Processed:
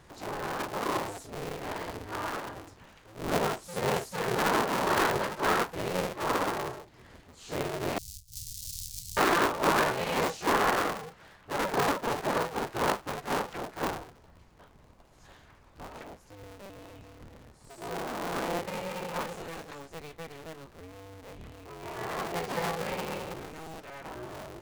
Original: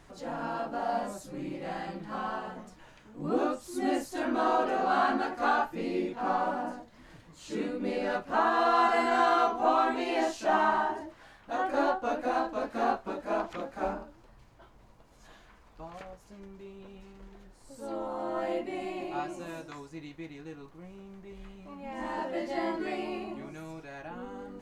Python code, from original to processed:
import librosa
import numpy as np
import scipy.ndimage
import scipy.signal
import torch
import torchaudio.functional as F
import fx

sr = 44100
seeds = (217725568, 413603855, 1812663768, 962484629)

y = fx.cycle_switch(x, sr, every=2, mode='inverted')
y = fx.cheby2_bandstop(y, sr, low_hz=410.0, high_hz=1300.0, order=4, stop_db=80, at=(7.98, 9.17))